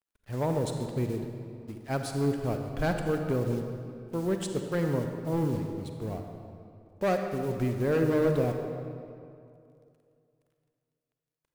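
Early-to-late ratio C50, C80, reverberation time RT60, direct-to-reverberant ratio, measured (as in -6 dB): 4.5 dB, 5.5 dB, 2.5 s, 4.5 dB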